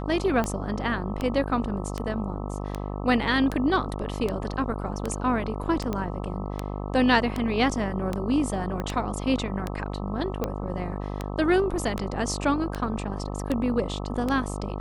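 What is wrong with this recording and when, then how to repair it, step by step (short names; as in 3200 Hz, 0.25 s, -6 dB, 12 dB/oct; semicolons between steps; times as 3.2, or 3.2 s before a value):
buzz 50 Hz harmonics 26 -32 dBFS
tick 78 rpm -14 dBFS
5.93 pop -16 dBFS
8.8 pop -18 dBFS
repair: de-click; de-hum 50 Hz, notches 26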